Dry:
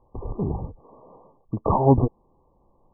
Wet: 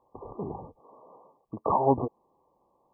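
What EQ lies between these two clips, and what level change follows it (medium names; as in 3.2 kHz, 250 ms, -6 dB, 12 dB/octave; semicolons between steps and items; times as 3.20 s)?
high-pass 630 Hz 6 dB/octave; 0.0 dB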